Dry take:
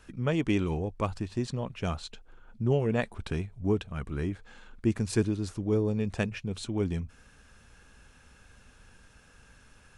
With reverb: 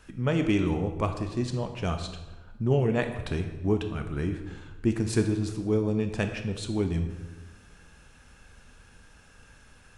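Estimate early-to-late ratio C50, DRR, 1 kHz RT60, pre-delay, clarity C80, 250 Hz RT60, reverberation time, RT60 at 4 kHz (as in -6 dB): 8.5 dB, 6.0 dB, 1.1 s, 19 ms, 10.0 dB, 1.5 s, 1.2 s, 0.85 s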